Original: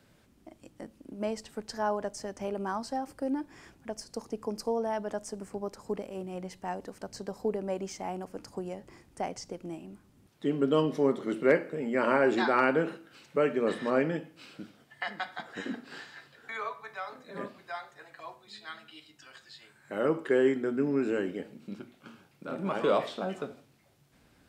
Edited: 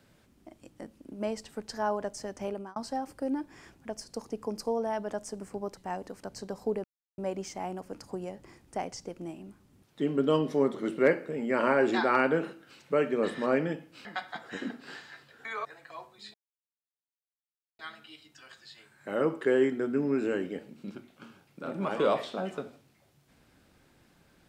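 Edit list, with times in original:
2.49–2.76 s: fade out
5.77–6.55 s: delete
7.62 s: insert silence 0.34 s
14.49–15.09 s: delete
16.69–17.94 s: delete
18.63 s: insert silence 1.45 s

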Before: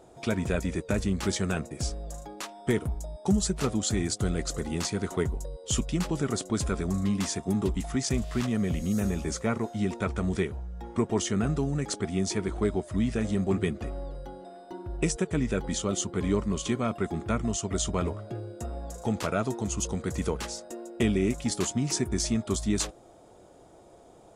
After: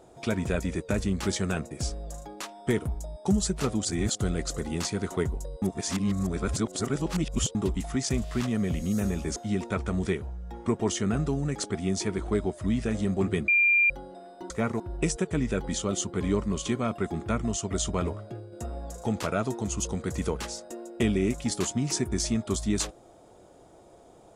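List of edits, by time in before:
3.85–4.15 s: reverse
5.62–7.55 s: reverse
9.36–9.66 s: move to 14.80 s
13.78–14.20 s: bleep 2.39 kHz -18 dBFS
18.15–18.52 s: fade out, to -7 dB

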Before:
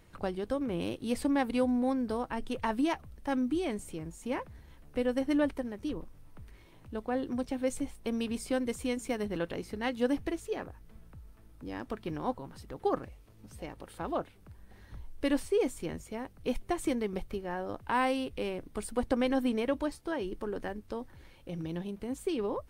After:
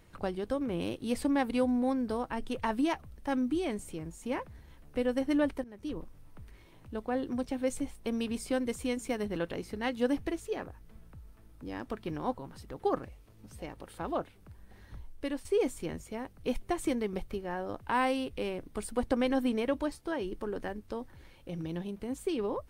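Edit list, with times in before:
5.64–5.98 s: fade in, from -15.5 dB
14.94–15.45 s: fade out, to -11 dB

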